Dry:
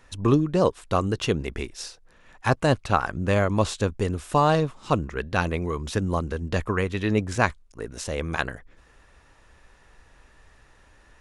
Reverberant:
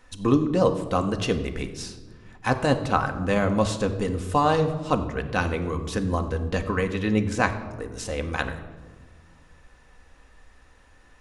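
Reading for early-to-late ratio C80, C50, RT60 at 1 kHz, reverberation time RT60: 12.5 dB, 11.0 dB, 1.2 s, 1.4 s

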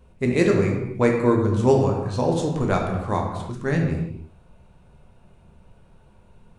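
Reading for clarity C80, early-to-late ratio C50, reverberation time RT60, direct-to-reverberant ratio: 6.0 dB, 4.0 dB, not exponential, 0.5 dB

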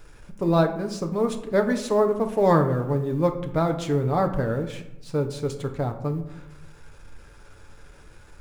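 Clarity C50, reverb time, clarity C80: 10.5 dB, 0.90 s, 13.5 dB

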